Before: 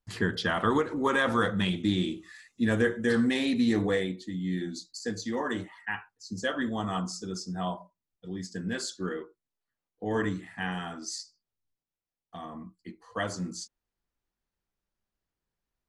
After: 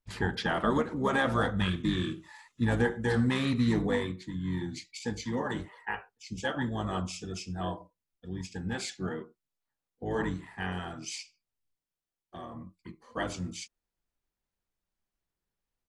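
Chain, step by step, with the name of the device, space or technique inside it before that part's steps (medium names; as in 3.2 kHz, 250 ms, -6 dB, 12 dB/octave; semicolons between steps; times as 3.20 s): octave pedal (harmony voices -12 st -4 dB); trim -3 dB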